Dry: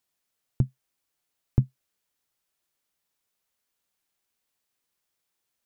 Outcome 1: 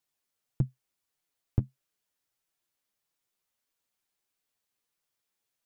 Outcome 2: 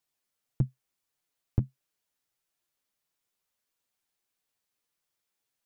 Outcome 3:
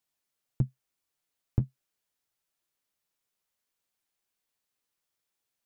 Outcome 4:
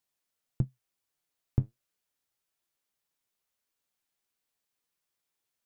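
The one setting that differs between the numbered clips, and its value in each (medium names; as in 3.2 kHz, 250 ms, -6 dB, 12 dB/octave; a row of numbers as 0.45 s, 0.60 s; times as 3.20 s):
flange, regen: +18%, -7%, -38%, +67%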